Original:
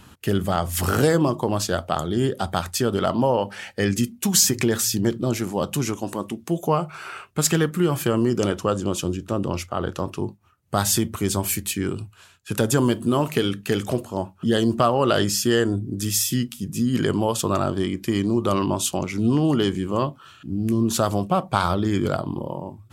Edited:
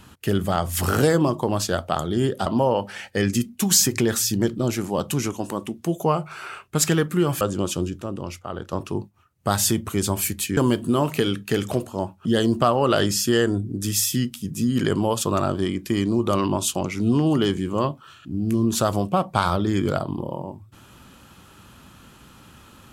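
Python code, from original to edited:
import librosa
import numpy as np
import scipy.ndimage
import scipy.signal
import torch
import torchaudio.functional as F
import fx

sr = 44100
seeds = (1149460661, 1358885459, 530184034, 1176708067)

y = fx.edit(x, sr, fx.cut(start_s=2.46, length_s=0.63),
    fx.cut(start_s=8.04, length_s=0.64),
    fx.clip_gain(start_s=9.29, length_s=0.71, db=-6.0),
    fx.cut(start_s=11.84, length_s=0.91), tone=tone)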